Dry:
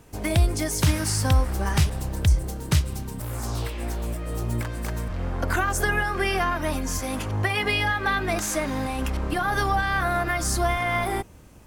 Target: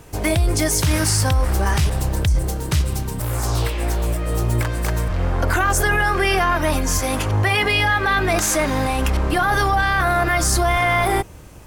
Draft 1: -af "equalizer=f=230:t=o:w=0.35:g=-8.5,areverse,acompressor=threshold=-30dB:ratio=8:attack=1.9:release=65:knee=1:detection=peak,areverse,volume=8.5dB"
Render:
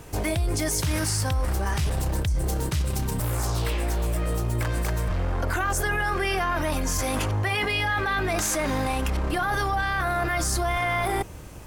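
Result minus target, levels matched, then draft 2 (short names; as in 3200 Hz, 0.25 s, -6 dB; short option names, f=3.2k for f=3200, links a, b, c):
compressor: peak gain reduction +7.5 dB
-af "equalizer=f=230:t=o:w=0.35:g=-8.5,areverse,acompressor=threshold=-21.5dB:ratio=8:attack=1.9:release=65:knee=1:detection=peak,areverse,volume=8.5dB"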